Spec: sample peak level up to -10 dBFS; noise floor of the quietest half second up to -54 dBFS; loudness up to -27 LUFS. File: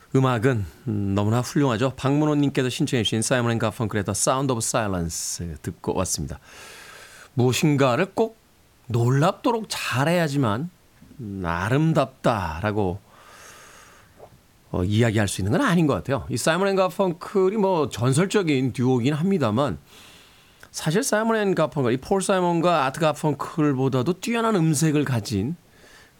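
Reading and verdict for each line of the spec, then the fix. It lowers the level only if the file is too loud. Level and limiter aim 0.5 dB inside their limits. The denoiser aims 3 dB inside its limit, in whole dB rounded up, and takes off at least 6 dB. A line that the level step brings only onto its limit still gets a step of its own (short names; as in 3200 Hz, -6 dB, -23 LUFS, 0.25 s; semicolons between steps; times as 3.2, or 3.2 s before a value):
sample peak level -7.0 dBFS: fail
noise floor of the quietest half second -57 dBFS: OK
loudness -22.5 LUFS: fail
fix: gain -5 dB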